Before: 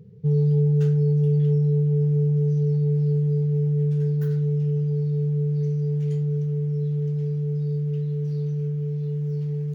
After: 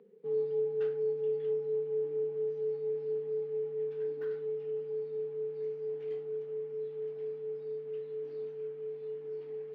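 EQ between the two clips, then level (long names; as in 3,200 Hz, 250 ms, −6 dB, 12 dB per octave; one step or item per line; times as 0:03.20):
Butterworth high-pass 250 Hz 48 dB per octave
high-frequency loss of the air 400 metres
0.0 dB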